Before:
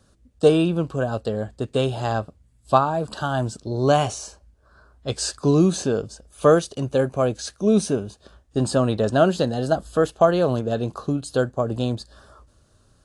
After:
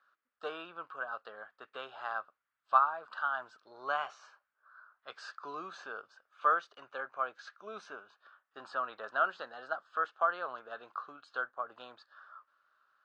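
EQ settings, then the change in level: dynamic bell 2.2 kHz, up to -4 dB, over -37 dBFS, Q 0.89; ladder band-pass 1.5 kHz, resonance 60%; distance through air 120 m; +5.0 dB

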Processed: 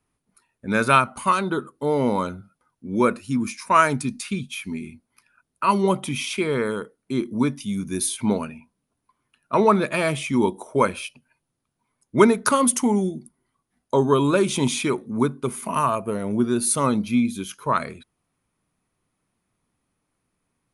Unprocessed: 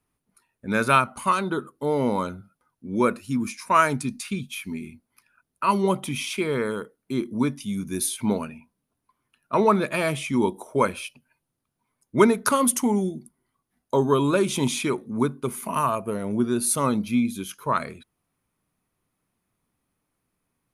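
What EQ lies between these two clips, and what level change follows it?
steep low-pass 11 kHz 72 dB/octave; +2.0 dB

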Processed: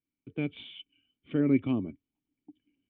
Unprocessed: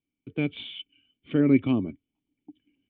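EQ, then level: distance through air 130 m; -4.5 dB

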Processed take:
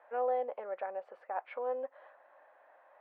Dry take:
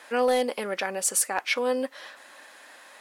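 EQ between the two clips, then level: ladder band-pass 760 Hz, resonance 45%; distance through air 440 m; +3.0 dB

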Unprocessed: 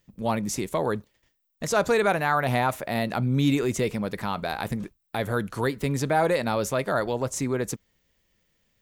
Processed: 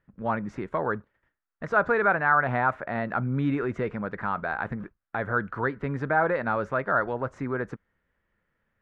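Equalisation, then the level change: resonant low-pass 1.5 kHz, resonance Q 3.2; -4.0 dB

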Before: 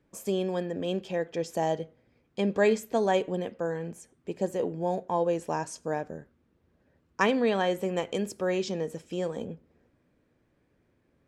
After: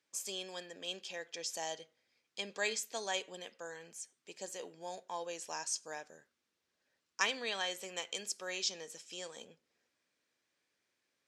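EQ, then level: band-pass filter 5.7 kHz, Q 1.2; +6.5 dB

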